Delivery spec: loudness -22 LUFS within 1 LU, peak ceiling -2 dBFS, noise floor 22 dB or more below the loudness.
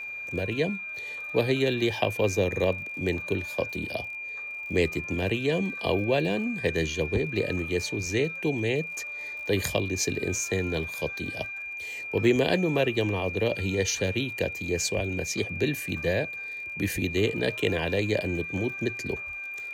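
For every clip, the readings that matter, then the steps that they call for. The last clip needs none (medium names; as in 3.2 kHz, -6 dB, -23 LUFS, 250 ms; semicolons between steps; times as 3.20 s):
tick rate 37 per s; steady tone 2.4 kHz; tone level -34 dBFS; loudness -28.0 LUFS; peak level -10.0 dBFS; loudness target -22.0 LUFS
-> de-click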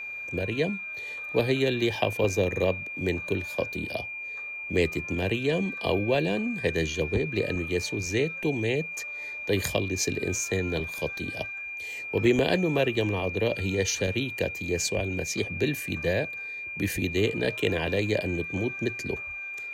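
tick rate 0.76 per s; steady tone 2.4 kHz; tone level -34 dBFS
-> band-stop 2.4 kHz, Q 30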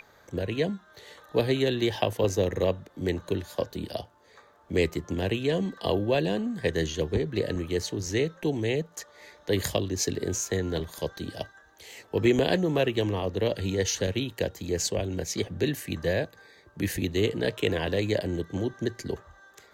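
steady tone not found; loudness -28.5 LUFS; peak level -10.5 dBFS; loudness target -22.0 LUFS
-> trim +6.5 dB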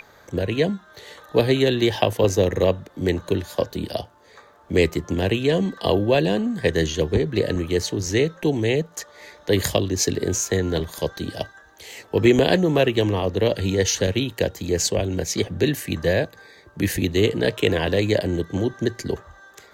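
loudness -22.0 LUFS; peak level -4.0 dBFS; noise floor -51 dBFS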